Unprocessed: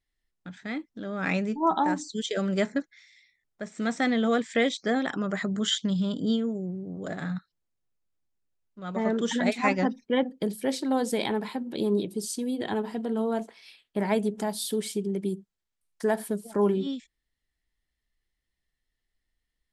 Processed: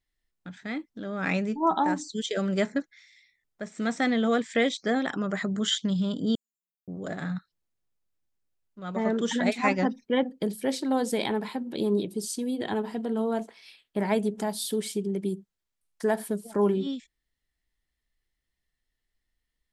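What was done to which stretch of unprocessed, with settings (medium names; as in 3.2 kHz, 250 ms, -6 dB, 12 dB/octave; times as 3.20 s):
6.35–6.88 s: inverse Chebyshev high-pass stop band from 2.7 kHz, stop band 80 dB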